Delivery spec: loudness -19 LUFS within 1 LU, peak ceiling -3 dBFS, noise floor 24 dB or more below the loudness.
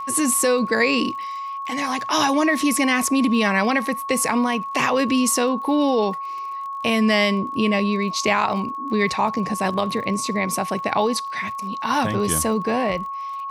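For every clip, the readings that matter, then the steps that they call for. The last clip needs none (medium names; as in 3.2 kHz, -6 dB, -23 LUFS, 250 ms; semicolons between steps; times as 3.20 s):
tick rate 39 per s; steady tone 1.1 kHz; tone level -27 dBFS; loudness -21.0 LUFS; peak level -6.0 dBFS; loudness target -19.0 LUFS
-> de-click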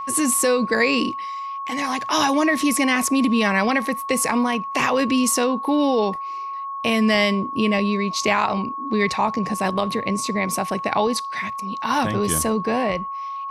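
tick rate 0 per s; steady tone 1.1 kHz; tone level -27 dBFS
-> band-stop 1.1 kHz, Q 30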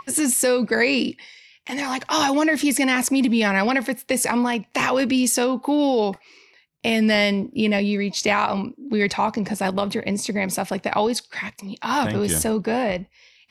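steady tone not found; loudness -21.5 LUFS; peak level -6.5 dBFS; loudness target -19.0 LUFS
-> trim +2.5 dB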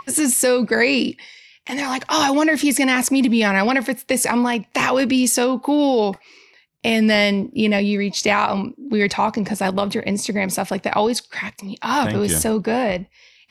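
loudness -19.0 LUFS; peak level -4.0 dBFS; noise floor -57 dBFS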